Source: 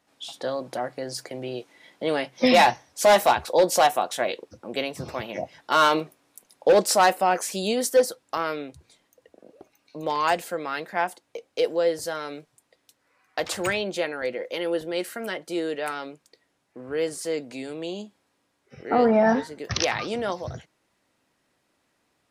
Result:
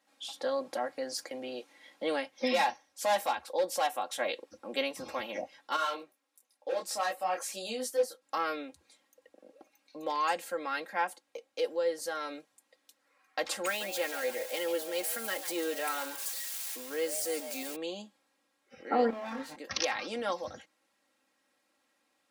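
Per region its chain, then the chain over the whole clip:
5.76–8.22 s: bass shelf 150 Hz -9 dB + detune thickener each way 20 cents
13.66–17.76 s: zero-crossing glitches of -26.5 dBFS + bass shelf 150 Hz -5.5 dB + frequency-shifting echo 143 ms, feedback 32%, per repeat +130 Hz, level -11 dB
19.10–19.56 s: comb filter that takes the minimum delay 7.7 ms + compression 3:1, threshold -33 dBFS + doubling 26 ms -2 dB
whole clip: high-pass 420 Hz 6 dB/octave; comb 3.7 ms, depth 71%; gain riding within 4 dB 0.5 s; trim -8.5 dB

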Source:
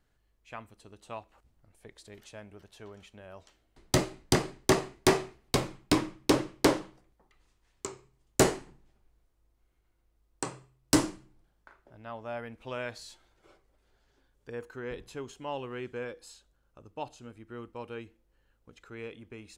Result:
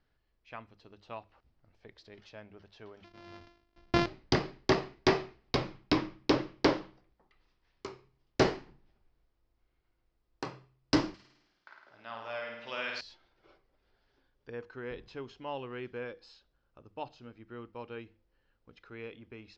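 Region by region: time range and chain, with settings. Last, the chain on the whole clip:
3.04–4.06 s: sorted samples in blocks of 128 samples + decay stretcher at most 83 dB/s
11.14–13.01 s: tilt EQ +4 dB/octave + flutter echo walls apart 9 m, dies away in 0.99 s
whole clip: elliptic low-pass 5.2 kHz, stop band 70 dB; hum notches 50/100/150/200 Hz; trim -1.5 dB

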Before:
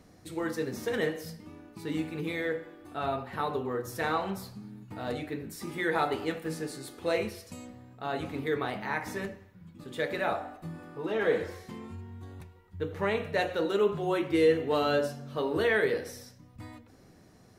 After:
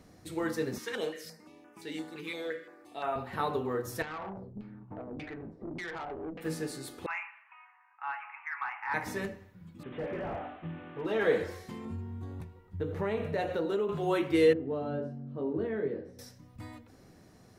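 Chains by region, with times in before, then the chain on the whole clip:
0.78–3.16 s: frequency weighting A + step-sequenced notch 5.8 Hz 650–4200 Hz
4.02–6.41 s: compression, threshold -35 dBFS + LFO low-pass saw down 1.7 Hz 250–2900 Hz + valve stage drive 34 dB, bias 0.55
7.06–8.94 s: Chebyshev band-pass 820–2700 Hz, order 5 + overdrive pedal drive 9 dB, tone 1.9 kHz, clips at -20.5 dBFS
9.83–11.06 s: one-bit delta coder 16 kbps, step -46.5 dBFS + high-pass 42 Hz + hard clipper -30 dBFS
11.85–13.89 s: tilt shelf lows +4.5 dB, about 1.1 kHz + compression 4:1, threshold -28 dBFS + doubling 18 ms -14 dB
14.53–16.19 s: band-pass filter 210 Hz, Q 1.1 + doubling 22 ms -6 dB
whole clip: none

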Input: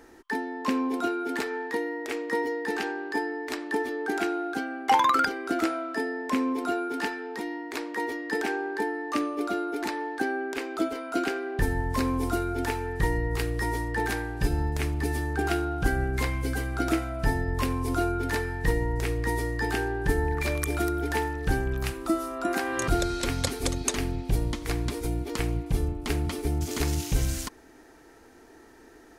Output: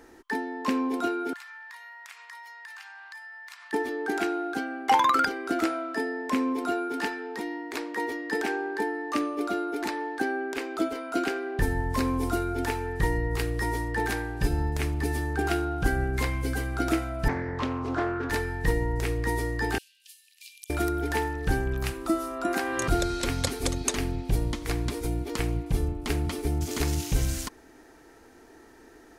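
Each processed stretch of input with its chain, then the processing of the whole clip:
1.33–3.73 s: steep high-pass 950 Hz + comb 2.9 ms, depth 35% + compression 5:1, threshold -42 dBFS
17.28–18.30 s: high-pass 110 Hz + distance through air 160 m + loudspeaker Doppler distortion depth 0.37 ms
19.78–20.70 s: Chebyshev high-pass 2.7 kHz, order 5 + compression 1.5:1, threshold -57 dBFS
whole clip: none

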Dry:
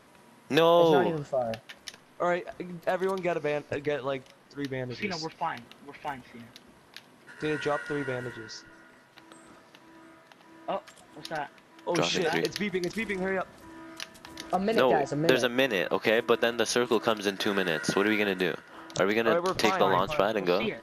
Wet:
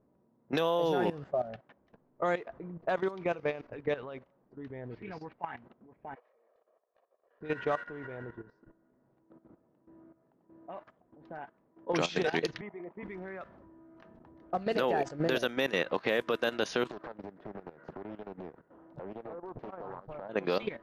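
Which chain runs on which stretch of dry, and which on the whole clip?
6.15–7.41 s: comb filter that takes the minimum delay 1.7 ms + high-pass 490 Hz 24 dB/octave + transient shaper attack -8 dB, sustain 0 dB
12.61–13.03 s: cabinet simulation 310–2400 Hz, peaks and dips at 320 Hz -5 dB, 620 Hz +4 dB, 920 Hz +5 dB, 1.5 kHz -8 dB + three bands expanded up and down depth 70%
16.91–20.29 s: compression 10:1, threshold -33 dBFS + loudspeaker Doppler distortion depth 0.97 ms
whole clip: level-controlled noise filter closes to 460 Hz, open at -20 dBFS; level held to a coarse grid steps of 14 dB

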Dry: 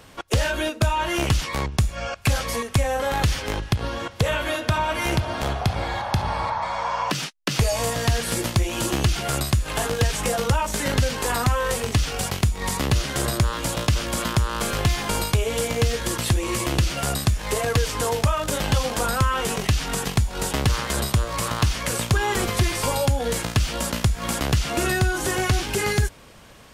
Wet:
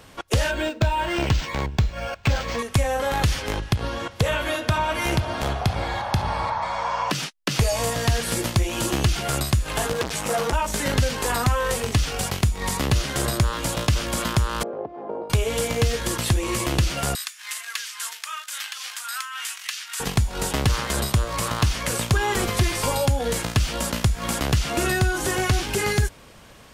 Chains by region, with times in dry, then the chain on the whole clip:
0.51–2.59 s: Butterworth band-stop 1.2 kHz, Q 7.4 + decimation joined by straight lines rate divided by 4×
9.93–10.53 s: high-pass 88 Hz 6 dB/octave + doubling 13 ms -3 dB + transformer saturation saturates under 1.4 kHz
14.63–15.30 s: tilt shelf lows +4.5 dB, about 640 Hz + compression 4:1, threshold -17 dBFS + Butterworth band-pass 530 Hz, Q 1.1
17.15–20.00 s: high-pass 1.4 kHz 24 dB/octave + tremolo triangle 3.6 Hz, depth 55%
whole clip: none

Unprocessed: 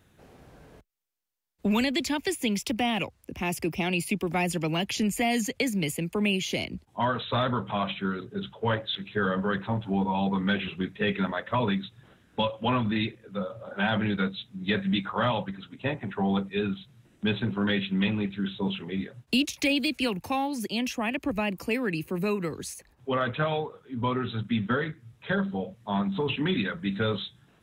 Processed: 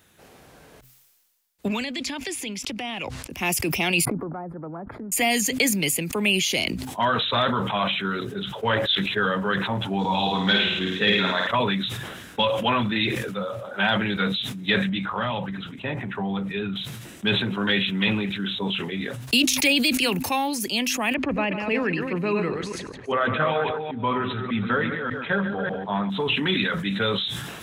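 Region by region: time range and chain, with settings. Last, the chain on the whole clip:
1.68–3.30 s: distance through air 61 m + compression 3:1, threshold -34 dBFS
4.05–5.12 s: elliptic low-pass 1.4 kHz, stop band 50 dB + compression 3:1, threshold -36 dBFS
9.99–11.47 s: high-order bell 5.2 kHz +10 dB 1.2 oct + flutter echo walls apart 9.2 m, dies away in 0.71 s
14.89–16.76 s: tone controls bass +6 dB, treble -9 dB + compression 2:1, threshold -29 dBFS
21.14–26.10 s: chunks repeated in reverse 198 ms, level -6 dB + low-pass 2.3 kHz + delay 146 ms -14.5 dB
whole clip: tilt EQ +2 dB/octave; de-hum 128.8 Hz, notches 2; decay stretcher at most 36 dB/s; trim +4.5 dB

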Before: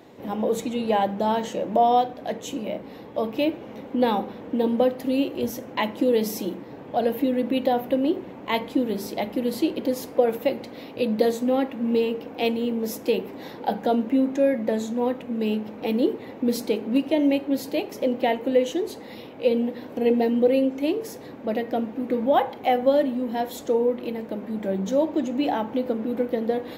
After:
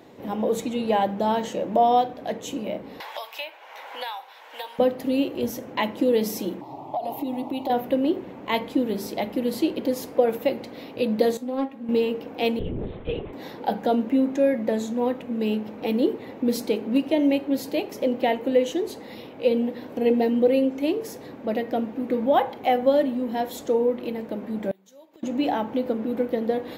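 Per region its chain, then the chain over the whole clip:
3.00–4.79 s: high-pass 880 Hz 24 dB/octave + band-stop 1.2 kHz, Q 10 + three bands compressed up and down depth 100%
6.61–7.70 s: peaking EQ 840 Hz +11.5 dB 0.95 oct + static phaser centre 320 Hz, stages 8 + compression 16:1, threshold -23 dBFS
11.37–11.89 s: feedback comb 270 Hz, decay 0.15 s, mix 80% + loudspeaker Doppler distortion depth 0.2 ms
12.59–13.33 s: compression 2:1, threshold -28 dBFS + LPC vocoder at 8 kHz whisper
24.71–25.23 s: tilt EQ +4 dB/octave + inverted gate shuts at -27 dBFS, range -25 dB
whole clip: none

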